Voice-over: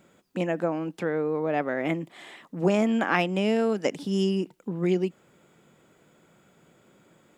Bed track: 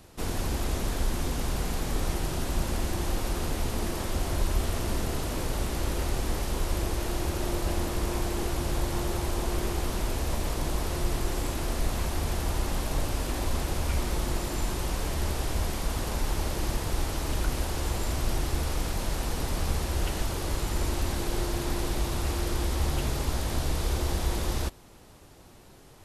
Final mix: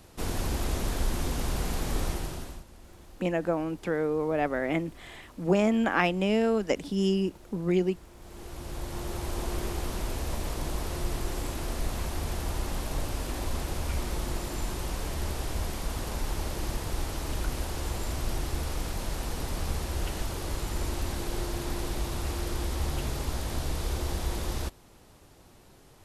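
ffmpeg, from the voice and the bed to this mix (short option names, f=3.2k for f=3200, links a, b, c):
-filter_complex "[0:a]adelay=2850,volume=-1dB[a];[1:a]volume=18.5dB,afade=t=out:st=2:d=0.64:silence=0.0841395,afade=t=in:st=8.17:d=1.24:silence=0.112202[b];[a][b]amix=inputs=2:normalize=0"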